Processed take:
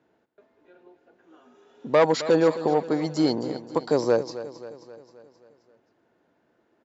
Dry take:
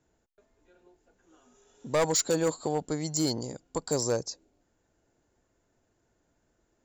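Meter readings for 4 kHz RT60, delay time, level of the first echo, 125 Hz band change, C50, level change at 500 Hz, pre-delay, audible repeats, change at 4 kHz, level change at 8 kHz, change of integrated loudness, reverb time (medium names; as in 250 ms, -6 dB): no reverb, 265 ms, -14.0 dB, +1.5 dB, no reverb, +8.0 dB, no reverb, 5, 0.0 dB, -12.5 dB, +6.0 dB, no reverb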